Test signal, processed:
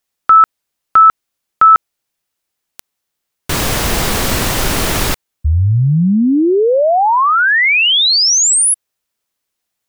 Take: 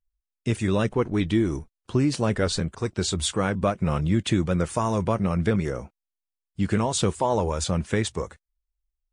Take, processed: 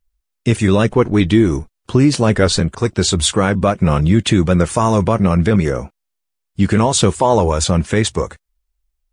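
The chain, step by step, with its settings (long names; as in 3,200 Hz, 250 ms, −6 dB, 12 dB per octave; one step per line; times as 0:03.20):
boost into a limiter +11.5 dB
level −1 dB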